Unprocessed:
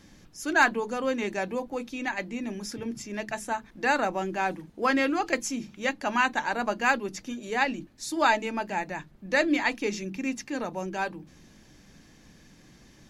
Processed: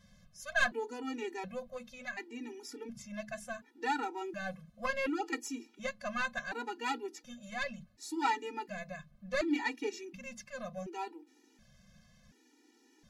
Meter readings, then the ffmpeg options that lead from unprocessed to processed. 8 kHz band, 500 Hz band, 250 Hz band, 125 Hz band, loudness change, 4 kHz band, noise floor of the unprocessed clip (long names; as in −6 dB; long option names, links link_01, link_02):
−9.5 dB, −9.5 dB, −9.5 dB, −10.0 dB, −9.5 dB, −8.0 dB, −56 dBFS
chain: -af "aeval=exprs='0.355*(cos(1*acos(clip(val(0)/0.355,-1,1)))-cos(1*PI/2))+0.141*(cos(2*acos(clip(val(0)/0.355,-1,1)))-cos(2*PI/2))':channel_layout=same,afftfilt=real='re*gt(sin(2*PI*0.69*pts/sr)*(1-2*mod(floor(b*sr/1024/250),2)),0)':imag='im*gt(sin(2*PI*0.69*pts/sr)*(1-2*mod(floor(b*sr/1024/250),2)),0)':win_size=1024:overlap=0.75,volume=-6.5dB"